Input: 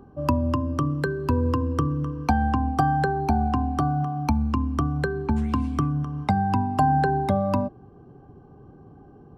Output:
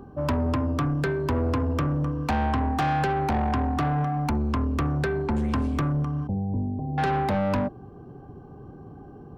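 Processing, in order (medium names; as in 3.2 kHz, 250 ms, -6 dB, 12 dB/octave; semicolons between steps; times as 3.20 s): saturation -25.5 dBFS, distortion -8 dB; 6.27–6.98 s: Gaussian low-pass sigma 18 samples; trim +4.5 dB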